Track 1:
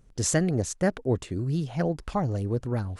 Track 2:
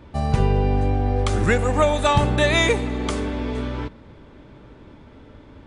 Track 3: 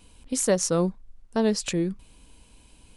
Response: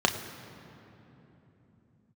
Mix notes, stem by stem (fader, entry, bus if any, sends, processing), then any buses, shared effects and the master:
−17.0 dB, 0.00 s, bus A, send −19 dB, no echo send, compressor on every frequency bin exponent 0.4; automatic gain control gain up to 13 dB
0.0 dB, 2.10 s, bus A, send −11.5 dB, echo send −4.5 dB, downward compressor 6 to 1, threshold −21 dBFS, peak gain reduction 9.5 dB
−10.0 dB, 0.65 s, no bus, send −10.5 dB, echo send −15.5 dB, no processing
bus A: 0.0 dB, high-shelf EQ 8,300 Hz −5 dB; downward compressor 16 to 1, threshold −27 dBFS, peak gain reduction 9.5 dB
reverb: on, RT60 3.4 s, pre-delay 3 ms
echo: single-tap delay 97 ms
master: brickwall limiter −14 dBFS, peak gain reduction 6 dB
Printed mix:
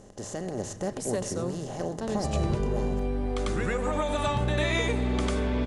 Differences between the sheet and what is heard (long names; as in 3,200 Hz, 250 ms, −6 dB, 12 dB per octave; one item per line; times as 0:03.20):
stem 2: send off
stem 3: send off